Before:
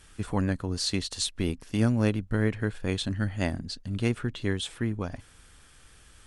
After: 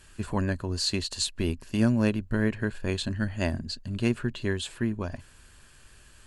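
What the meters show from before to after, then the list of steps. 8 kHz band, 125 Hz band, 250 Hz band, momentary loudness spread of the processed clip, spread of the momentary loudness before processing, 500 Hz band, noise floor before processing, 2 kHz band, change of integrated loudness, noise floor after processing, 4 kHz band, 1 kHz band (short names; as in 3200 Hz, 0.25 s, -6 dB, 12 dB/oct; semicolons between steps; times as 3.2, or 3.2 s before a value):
0.0 dB, -1.0 dB, +1.0 dB, 7 LU, 6 LU, +0.5 dB, -55 dBFS, +1.5 dB, +0.5 dB, -55 dBFS, +1.0 dB, 0.0 dB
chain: ripple EQ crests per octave 1.4, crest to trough 6 dB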